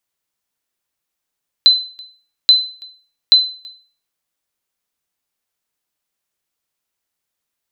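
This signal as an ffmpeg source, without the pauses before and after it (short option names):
-f lavfi -i "aevalsrc='0.841*(sin(2*PI*4040*mod(t,0.83))*exp(-6.91*mod(t,0.83)/0.42)+0.0447*sin(2*PI*4040*max(mod(t,0.83)-0.33,0))*exp(-6.91*max(mod(t,0.83)-0.33,0)/0.42))':d=2.49:s=44100"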